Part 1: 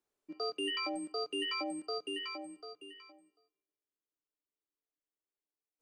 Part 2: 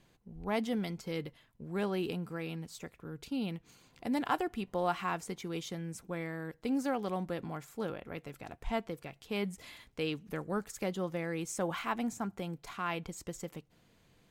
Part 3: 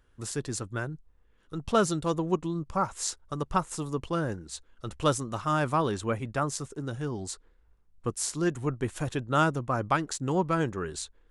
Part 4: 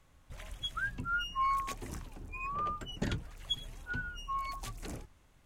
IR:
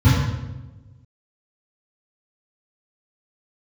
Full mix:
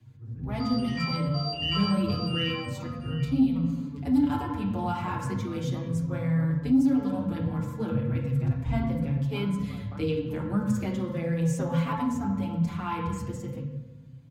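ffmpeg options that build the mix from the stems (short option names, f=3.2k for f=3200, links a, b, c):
-filter_complex "[0:a]highpass=f=720:w=0.5412,highpass=f=720:w=1.3066,adelay=200,volume=1.5dB,asplit=2[a][b];[b]volume=-6.5dB[c];[1:a]dynaudnorm=f=200:g=11:m=5dB,flanger=delay=6.6:depth=8.9:regen=-66:speed=0.42:shape=sinusoidal,volume=2dB,asplit=2[d][e];[e]volume=-18.5dB[f];[2:a]lowpass=1.4k,volume=-19dB,asplit=2[g][h];[h]volume=-22.5dB[i];[4:a]atrim=start_sample=2205[j];[c][f][i]amix=inputs=3:normalize=0[k];[k][j]afir=irnorm=-1:irlink=0[l];[a][d][g][l]amix=inputs=4:normalize=0,acrossover=split=210|3000[m][n][o];[n]acompressor=threshold=-26dB:ratio=3[p];[m][p][o]amix=inputs=3:normalize=0,asoftclip=type=tanh:threshold=-11dB,asplit=2[q][r];[r]adelay=6,afreqshift=0.37[s];[q][s]amix=inputs=2:normalize=1"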